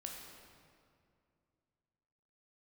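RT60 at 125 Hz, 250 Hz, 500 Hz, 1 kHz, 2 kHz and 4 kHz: 3.1, 2.9, 2.5, 2.2, 1.9, 1.5 seconds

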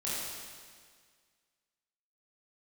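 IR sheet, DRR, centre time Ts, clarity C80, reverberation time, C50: −9.0 dB, 129 ms, −1.0 dB, 1.8 s, −3.0 dB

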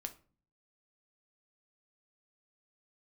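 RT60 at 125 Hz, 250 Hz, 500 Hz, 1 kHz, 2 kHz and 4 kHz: 0.75, 0.65, 0.45, 0.35, 0.35, 0.25 seconds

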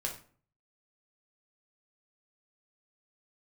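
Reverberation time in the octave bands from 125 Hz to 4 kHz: 0.65, 0.55, 0.50, 0.45, 0.40, 0.30 seconds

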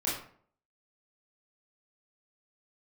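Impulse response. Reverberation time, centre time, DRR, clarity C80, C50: 0.55 s, 45 ms, −7.5 dB, 8.0 dB, 3.0 dB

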